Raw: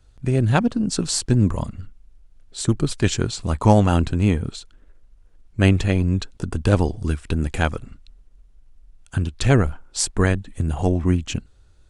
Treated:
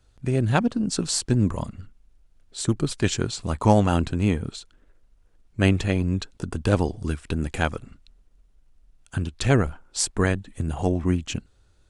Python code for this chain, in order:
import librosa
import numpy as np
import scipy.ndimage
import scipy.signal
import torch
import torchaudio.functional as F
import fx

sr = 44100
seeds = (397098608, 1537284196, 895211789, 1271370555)

y = fx.low_shelf(x, sr, hz=85.0, db=-6.5)
y = F.gain(torch.from_numpy(y), -2.0).numpy()